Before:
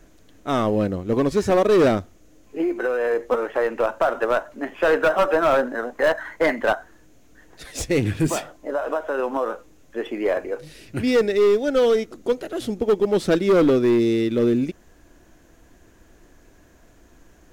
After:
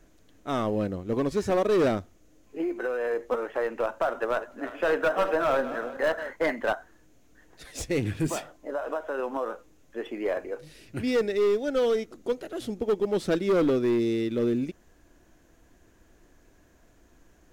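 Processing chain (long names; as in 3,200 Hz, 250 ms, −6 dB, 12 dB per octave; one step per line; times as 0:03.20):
0:04.15–0:06.33: feedback delay that plays each chunk backwards 182 ms, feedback 57%, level −12 dB
level −6.5 dB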